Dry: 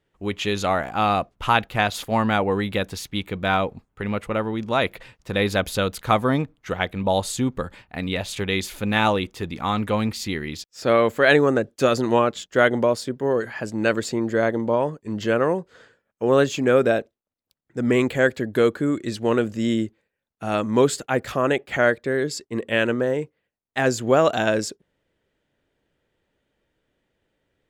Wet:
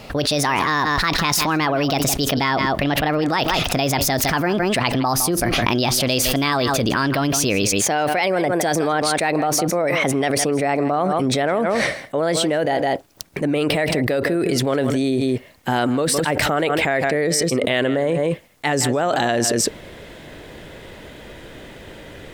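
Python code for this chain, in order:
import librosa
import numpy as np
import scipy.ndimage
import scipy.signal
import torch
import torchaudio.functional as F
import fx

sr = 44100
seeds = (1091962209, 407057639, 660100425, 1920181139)

y = fx.speed_glide(x, sr, from_pct=145, to_pct=103)
y = y + 10.0 ** (-18.0 / 20.0) * np.pad(y, (int(160 * sr / 1000.0), 0))[:len(y)]
y = fx.env_flatten(y, sr, amount_pct=100)
y = y * 10.0 ** (-5.5 / 20.0)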